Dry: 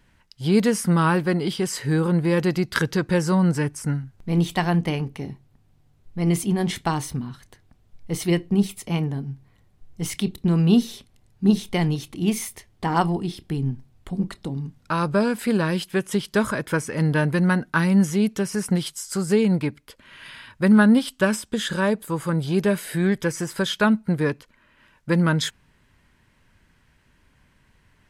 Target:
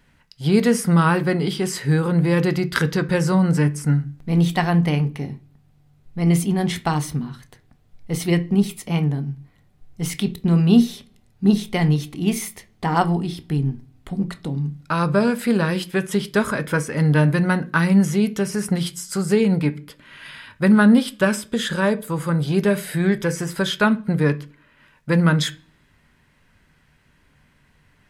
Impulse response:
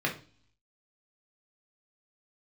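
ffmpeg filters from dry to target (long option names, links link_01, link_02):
-filter_complex "[0:a]asplit=2[link_01][link_02];[1:a]atrim=start_sample=2205,highshelf=frequency=10000:gain=9.5[link_03];[link_02][link_03]afir=irnorm=-1:irlink=0,volume=-15.5dB[link_04];[link_01][link_04]amix=inputs=2:normalize=0"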